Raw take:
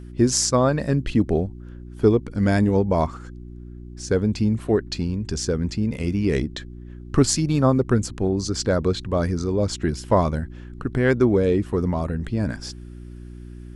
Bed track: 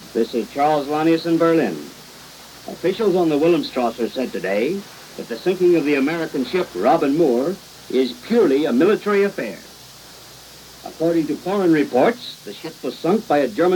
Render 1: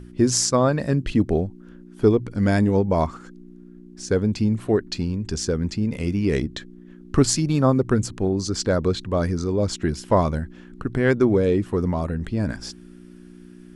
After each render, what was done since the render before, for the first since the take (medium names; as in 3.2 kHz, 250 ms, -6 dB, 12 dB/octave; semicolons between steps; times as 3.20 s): de-hum 60 Hz, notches 2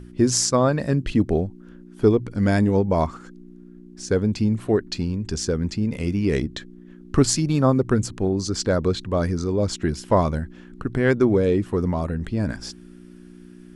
no audible change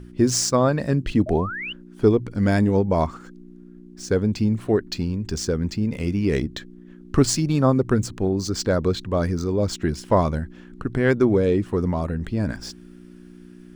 median filter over 3 samples; 1.26–1.73 s: painted sound rise 590–3100 Hz -31 dBFS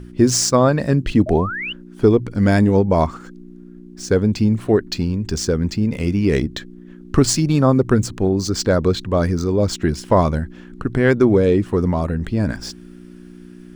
trim +4.5 dB; peak limiter -3 dBFS, peak gain reduction 2.5 dB